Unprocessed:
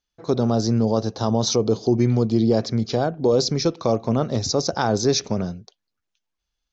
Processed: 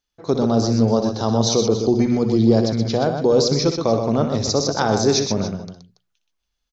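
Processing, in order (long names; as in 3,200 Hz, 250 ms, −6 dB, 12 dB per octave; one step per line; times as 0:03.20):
mains-hum notches 60/120/180 Hz
multi-tap delay 61/124/282 ms −11/−6.5/−15 dB
level +1.5 dB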